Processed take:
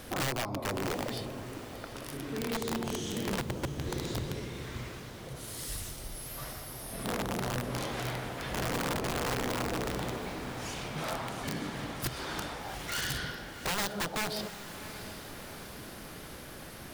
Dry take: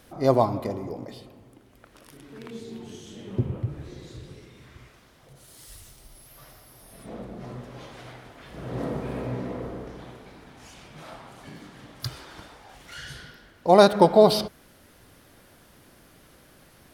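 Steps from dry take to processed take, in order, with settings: compressor 6:1, threshold -37 dBFS, peak gain reduction 25 dB; wrapped overs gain 34 dB; diffused feedback echo 0.728 s, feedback 59%, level -12 dB; gain +8 dB

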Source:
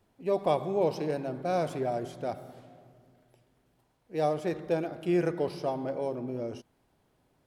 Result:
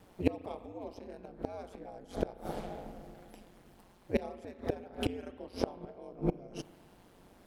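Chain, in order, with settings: flipped gate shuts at -27 dBFS, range -27 dB; ring modulator 92 Hz; spring tank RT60 1.9 s, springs 34 ms, chirp 55 ms, DRR 17 dB; gain +13.5 dB

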